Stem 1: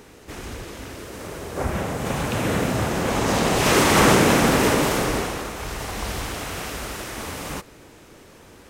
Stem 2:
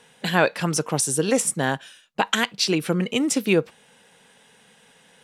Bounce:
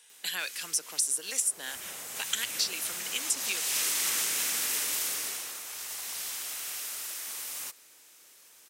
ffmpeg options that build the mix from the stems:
-filter_complex "[0:a]adelay=100,volume=0.5dB[a];[1:a]highpass=f=180:w=0.5412,highpass=f=180:w=1.3066,volume=2.5dB[b];[a][b]amix=inputs=2:normalize=0,aderivative,acrossover=split=490|1400[c][d][e];[c]acompressor=threshold=-50dB:ratio=4[f];[d]acompressor=threshold=-52dB:ratio=4[g];[e]acompressor=threshold=-26dB:ratio=4[h];[f][g][h]amix=inputs=3:normalize=0"

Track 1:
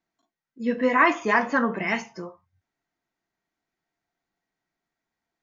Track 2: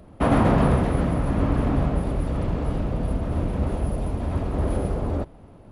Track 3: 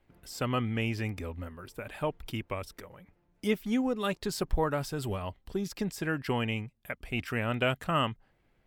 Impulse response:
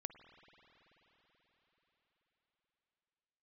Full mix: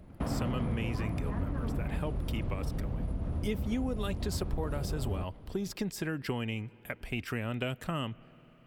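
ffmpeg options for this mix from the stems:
-filter_complex "[0:a]lowpass=1.1k,alimiter=limit=-20dB:level=0:latency=1,volume=-13dB[a];[1:a]bass=f=250:g=7,treble=f=4k:g=1,acompressor=threshold=-18dB:ratio=2,volume=-9.5dB[b];[2:a]acrossover=split=470|3000[c][d][e];[d]acompressor=threshold=-39dB:ratio=2.5[f];[c][f][e]amix=inputs=3:normalize=0,volume=0.5dB,asplit=2[g][h];[h]volume=-11.5dB[i];[3:a]atrim=start_sample=2205[j];[i][j]afir=irnorm=-1:irlink=0[k];[a][b][g][k]amix=inputs=4:normalize=0,acompressor=threshold=-31dB:ratio=2.5"

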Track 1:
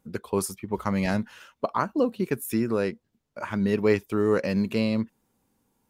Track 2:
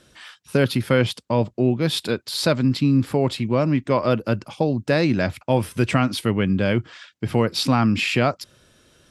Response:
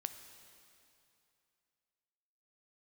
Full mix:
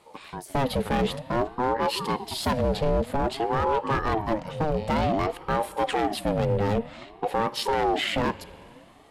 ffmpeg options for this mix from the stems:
-filter_complex "[0:a]volume=-11dB[a];[1:a]equalizer=f=5.4k:t=o:w=0.26:g=-12.5,volume=-4.5dB,asplit=2[b][c];[c]volume=-5dB[d];[2:a]atrim=start_sample=2205[e];[d][e]afir=irnorm=-1:irlink=0[f];[a][b][f]amix=inputs=3:normalize=0,lowshelf=f=410:g=4,asoftclip=type=hard:threshold=-17dB,aeval=exprs='val(0)*sin(2*PI*500*n/s+500*0.4/0.53*sin(2*PI*0.53*n/s))':c=same"

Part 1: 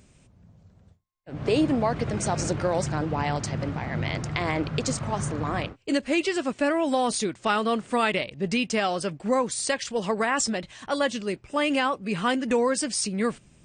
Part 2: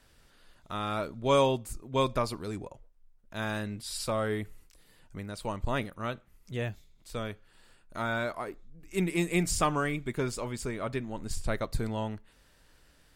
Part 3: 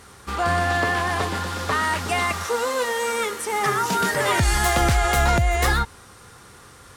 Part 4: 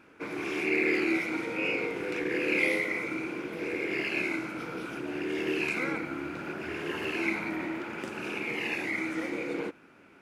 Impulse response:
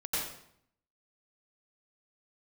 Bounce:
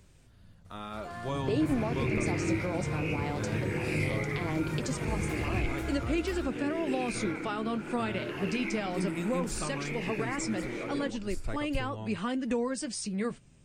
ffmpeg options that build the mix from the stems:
-filter_complex "[0:a]volume=-1.5dB[a];[1:a]volume=-3dB[b];[2:a]adelay=650,volume=-16.5dB[c];[3:a]adelay=1400,volume=1dB[d];[a][b][c][d]amix=inputs=4:normalize=0,lowshelf=f=140:g=4.5,acrossover=split=370[e][f];[f]acompressor=threshold=-33dB:ratio=2[g];[e][g]amix=inputs=2:normalize=0,flanger=delay=1.9:depth=9.3:regen=-59:speed=0.17:shape=triangular"

